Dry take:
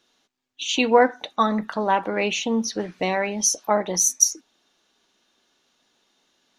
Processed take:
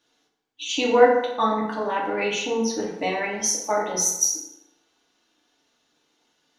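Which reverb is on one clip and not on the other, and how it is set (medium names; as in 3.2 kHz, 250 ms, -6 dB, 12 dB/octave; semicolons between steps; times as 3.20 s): FDN reverb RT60 0.96 s, low-frequency decay 0.85×, high-frequency decay 0.6×, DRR -4.5 dB; trim -6.5 dB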